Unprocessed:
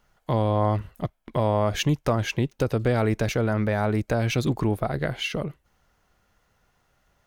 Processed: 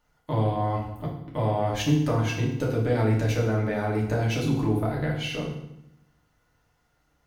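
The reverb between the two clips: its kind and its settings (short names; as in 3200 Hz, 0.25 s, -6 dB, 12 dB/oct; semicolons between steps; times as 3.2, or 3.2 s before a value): FDN reverb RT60 0.8 s, low-frequency decay 1.4×, high-frequency decay 0.9×, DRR -3.5 dB; gain -7.5 dB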